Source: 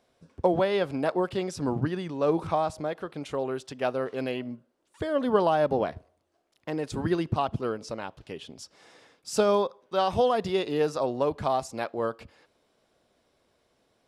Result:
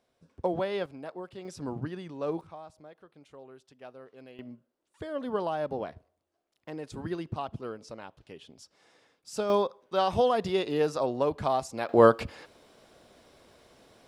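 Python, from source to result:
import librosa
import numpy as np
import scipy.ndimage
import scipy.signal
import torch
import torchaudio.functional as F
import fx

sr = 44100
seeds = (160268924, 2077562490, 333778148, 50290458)

y = fx.gain(x, sr, db=fx.steps((0.0, -6.0), (0.86, -14.0), (1.45, -7.5), (2.41, -19.0), (4.39, -8.0), (9.5, -1.0), (11.89, 11.5)))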